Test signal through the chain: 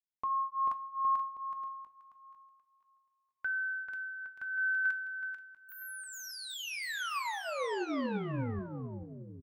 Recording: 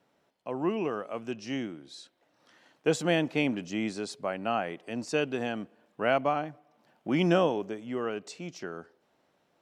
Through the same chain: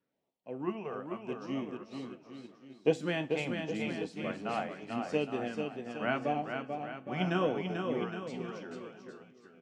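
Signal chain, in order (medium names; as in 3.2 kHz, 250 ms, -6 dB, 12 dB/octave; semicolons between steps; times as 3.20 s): treble shelf 4.4 kHz -11 dB; LFO notch sine 0.81 Hz 280–1600 Hz; bouncing-ball echo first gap 440 ms, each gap 0.85×, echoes 5; two-slope reverb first 0.32 s, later 1.8 s, from -18 dB, DRR 8 dB; upward expansion 1.5:1, over -46 dBFS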